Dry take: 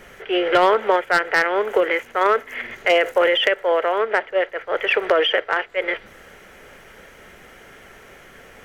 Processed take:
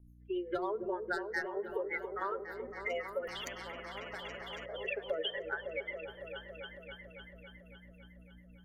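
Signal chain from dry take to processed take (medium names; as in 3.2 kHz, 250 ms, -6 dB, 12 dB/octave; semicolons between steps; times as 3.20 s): expander on every frequency bin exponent 3; hum 60 Hz, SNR 31 dB; compression 6:1, threshold -35 dBFS, peak gain reduction 17.5 dB; rotary cabinet horn 7 Hz; delay with an opening low-pass 278 ms, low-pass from 400 Hz, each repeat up 1 oct, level -3 dB; on a send at -22 dB: reverberation RT60 2.1 s, pre-delay 4 ms; 3.27–4.66 s: on the sum: spectrum-flattening compressor 4:1; trim +2.5 dB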